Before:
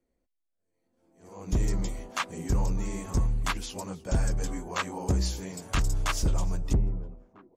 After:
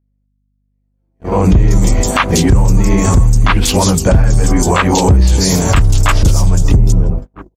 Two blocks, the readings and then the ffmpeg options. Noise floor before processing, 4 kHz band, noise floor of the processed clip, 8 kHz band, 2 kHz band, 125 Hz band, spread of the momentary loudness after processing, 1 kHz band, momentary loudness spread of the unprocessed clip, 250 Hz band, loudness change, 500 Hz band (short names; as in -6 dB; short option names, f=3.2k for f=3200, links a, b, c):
-79 dBFS, +18.0 dB, -63 dBFS, +20.0 dB, +17.0 dB, +20.0 dB, 3 LU, +19.0 dB, 9 LU, +20.5 dB, +19.0 dB, +21.0 dB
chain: -filter_complex "[0:a]equalizer=f=91:t=o:w=1.3:g=7,acrossover=split=3900[a][b];[b]adelay=190[c];[a][c]amix=inputs=2:normalize=0,acompressor=threshold=-41dB:ratio=2.5,aeval=exprs='val(0)+0.00224*(sin(2*PI*50*n/s)+sin(2*PI*2*50*n/s)/2+sin(2*PI*3*50*n/s)/3+sin(2*PI*4*50*n/s)/4+sin(2*PI*5*50*n/s)/5)':c=same,agate=range=-42dB:threshold=-47dB:ratio=16:detection=peak,alimiter=level_in=34dB:limit=-1dB:release=50:level=0:latency=1,volume=-1dB"